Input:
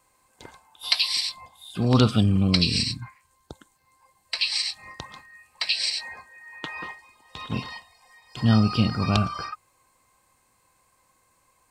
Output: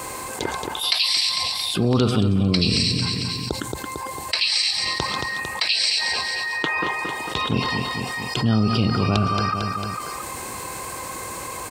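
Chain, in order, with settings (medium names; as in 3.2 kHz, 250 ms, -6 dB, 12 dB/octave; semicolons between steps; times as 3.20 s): high-pass 48 Hz; peaking EQ 390 Hz +6.5 dB 0.75 oct; on a send: feedback delay 225 ms, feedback 34%, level -12 dB; on the sum: level flattener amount 70%; trim -4 dB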